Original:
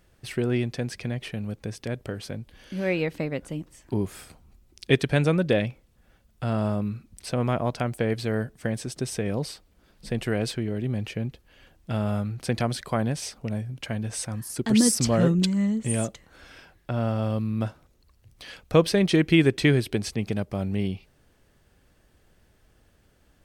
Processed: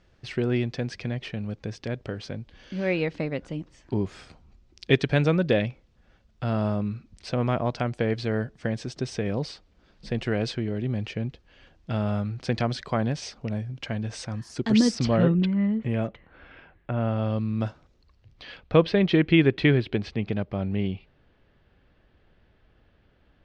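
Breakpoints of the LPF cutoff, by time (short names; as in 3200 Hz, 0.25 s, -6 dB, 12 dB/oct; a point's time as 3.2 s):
LPF 24 dB/oct
14.78 s 5900 Hz
15.47 s 2800 Hz
16.93 s 2800 Hz
17.66 s 6600 Hz
18.8 s 3800 Hz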